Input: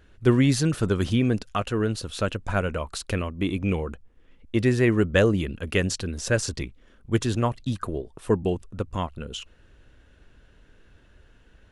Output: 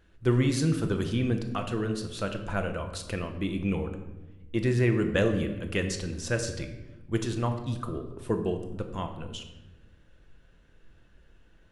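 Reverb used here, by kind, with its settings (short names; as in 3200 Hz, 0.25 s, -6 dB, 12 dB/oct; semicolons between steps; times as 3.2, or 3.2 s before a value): shoebox room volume 500 m³, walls mixed, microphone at 0.75 m; gain -6 dB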